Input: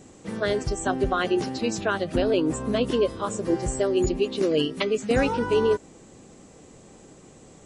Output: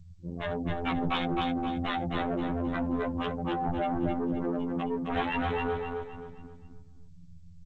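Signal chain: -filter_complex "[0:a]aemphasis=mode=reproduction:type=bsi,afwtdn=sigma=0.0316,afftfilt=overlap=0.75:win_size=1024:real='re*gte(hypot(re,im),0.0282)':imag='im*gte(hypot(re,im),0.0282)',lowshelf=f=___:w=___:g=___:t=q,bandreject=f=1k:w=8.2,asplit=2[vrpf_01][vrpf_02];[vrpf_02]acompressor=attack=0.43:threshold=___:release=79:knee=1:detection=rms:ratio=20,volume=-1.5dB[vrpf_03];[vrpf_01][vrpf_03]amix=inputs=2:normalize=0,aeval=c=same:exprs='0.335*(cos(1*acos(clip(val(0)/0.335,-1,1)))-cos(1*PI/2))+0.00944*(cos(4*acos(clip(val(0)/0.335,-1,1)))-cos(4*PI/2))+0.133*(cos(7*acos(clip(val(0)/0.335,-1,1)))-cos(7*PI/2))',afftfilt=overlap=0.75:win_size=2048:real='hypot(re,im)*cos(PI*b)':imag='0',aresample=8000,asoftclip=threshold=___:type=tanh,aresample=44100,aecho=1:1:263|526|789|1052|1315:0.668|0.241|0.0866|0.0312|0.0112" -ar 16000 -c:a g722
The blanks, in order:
630, 3, -8.5, -38dB, -19.5dB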